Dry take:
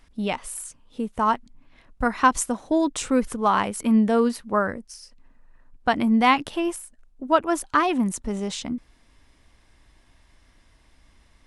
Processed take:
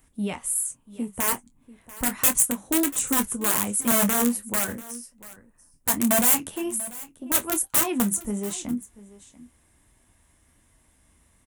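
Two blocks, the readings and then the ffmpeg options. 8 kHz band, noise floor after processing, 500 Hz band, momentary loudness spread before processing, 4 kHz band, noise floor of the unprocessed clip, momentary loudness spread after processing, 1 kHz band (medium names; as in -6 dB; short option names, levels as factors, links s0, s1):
+11.0 dB, -63 dBFS, -6.0 dB, 14 LU, 0.0 dB, -59 dBFS, 14 LU, -10.0 dB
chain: -filter_complex "[0:a]acrossover=split=490|800[s0][s1][s2];[s1]acompressor=threshold=0.00794:ratio=8[s3];[s0][s3][s2]amix=inputs=3:normalize=0,aeval=exprs='(mod(5.96*val(0)+1,2)-1)/5.96':c=same,highshelf=f=6200:g=-9,aexciter=amount=12:drive=4.7:freq=7100,highpass=f=130:p=1,lowshelf=f=230:g=9.5,flanger=delay=7.7:depth=5.5:regen=-51:speed=1.3:shape=sinusoidal,asplit=2[s4][s5];[s5]adelay=25,volume=0.266[s6];[s4][s6]amix=inputs=2:normalize=0,asplit=2[s7][s8];[s8]aecho=0:1:689:0.112[s9];[s7][s9]amix=inputs=2:normalize=0,volume=0.891"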